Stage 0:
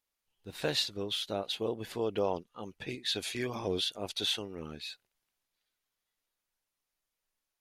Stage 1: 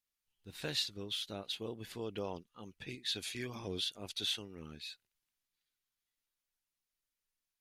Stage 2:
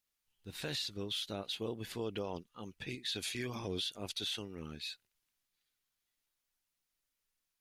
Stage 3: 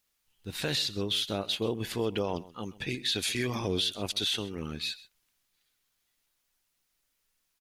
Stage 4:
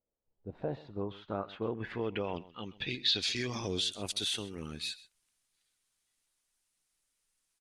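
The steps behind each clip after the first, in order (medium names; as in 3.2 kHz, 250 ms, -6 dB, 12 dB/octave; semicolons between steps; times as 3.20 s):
peaking EQ 640 Hz -8 dB 1.9 oct; trim -3.5 dB
peak limiter -32 dBFS, peak gain reduction 10 dB; trim +3.5 dB
delay 130 ms -19 dB; trim +8.5 dB
low-pass sweep 540 Hz -> 9.3 kHz, 0.32–4.08 s; trim -5 dB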